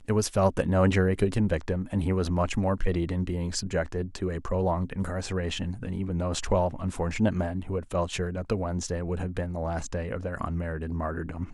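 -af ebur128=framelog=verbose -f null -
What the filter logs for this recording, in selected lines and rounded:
Integrated loudness:
  I:         -28.7 LUFS
  Threshold: -38.7 LUFS
Loudness range:
  LRA:         5.1 LU
  Threshold: -49.2 LUFS
  LRA low:   -31.3 LUFS
  LRA high:  -26.3 LUFS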